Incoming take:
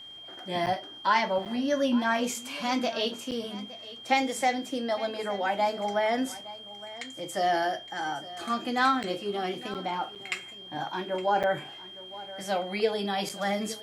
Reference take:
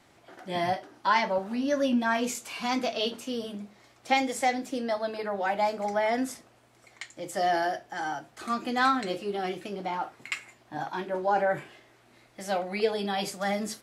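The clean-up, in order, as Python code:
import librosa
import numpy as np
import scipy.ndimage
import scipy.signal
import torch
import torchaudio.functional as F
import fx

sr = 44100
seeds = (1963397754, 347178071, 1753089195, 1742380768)

y = fx.notch(x, sr, hz=3200.0, q=30.0)
y = fx.fix_interpolate(y, sr, at_s=(0.66, 1.45, 3.31, 9.03, 9.74, 10.15, 11.43, 13.29), length_ms=7.5)
y = fx.fix_echo_inverse(y, sr, delay_ms=864, level_db=-17.5)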